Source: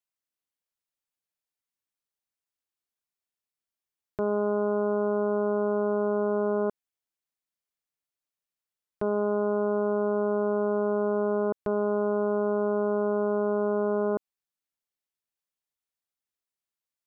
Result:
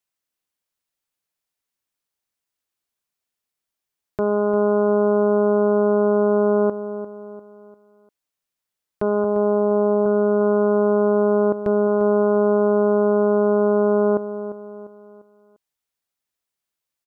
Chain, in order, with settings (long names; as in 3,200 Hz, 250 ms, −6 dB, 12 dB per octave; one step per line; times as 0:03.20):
0:09.24–0:10.06: Chebyshev band-pass filter 120–920 Hz, order 2
repeating echo 348 ms, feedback 42%, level −12.5 dB
level +6.5 dB